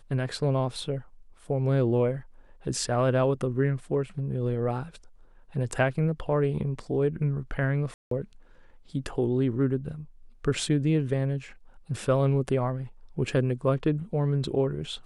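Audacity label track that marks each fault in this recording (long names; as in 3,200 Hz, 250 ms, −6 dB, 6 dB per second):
7.940000	8.110000	drop-out 173 ms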